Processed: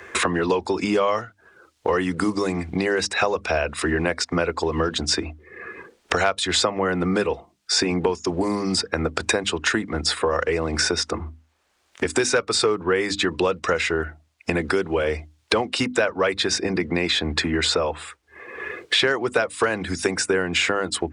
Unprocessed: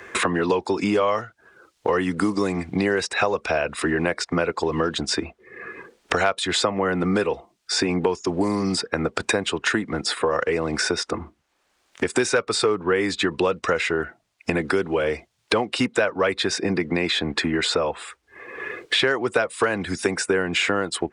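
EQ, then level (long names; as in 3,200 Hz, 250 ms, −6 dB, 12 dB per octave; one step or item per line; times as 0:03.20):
mains-hum notches 50/100/150/200/250/300 Hz
dynamic equaliser 5,800 Hz, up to +4 dB, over −39 dBFS, Q 1.1
parametric band 78 Hz +11.5 dB 0.2 octaves
0.0 dB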